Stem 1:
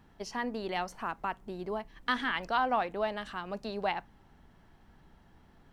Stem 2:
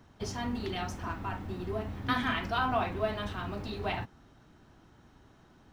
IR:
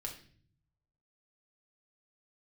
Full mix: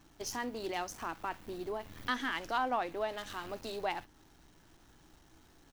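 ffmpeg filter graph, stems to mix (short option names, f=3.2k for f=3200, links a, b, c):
-filter_complex "[0:a]equalizer=f=200:t=o:w=0.33:g=-8,equalizer=f=315:t=o:w=0.33:g=10,equalizer=f=6.3k:t=o:w=0.33:g=12,volume=-4dB,asplit=2[a][b];[1:a]aeval=exprs='max(val(0),0)':c=same,alimiter=level_in=4.5dB:limit=-24dB:level=0:latency=1:release=45,volume=-4.5dB,crystalizer=i=7.5:c=0,adelay=2.8,volume=-8dB[c];[b]apad=whole_len=252563[d];[c][d]sidechaincompress=threshold=-43dB:ratio=8:attack=38:release=298[e];[a][e]amix=inputs=2:normalize=0"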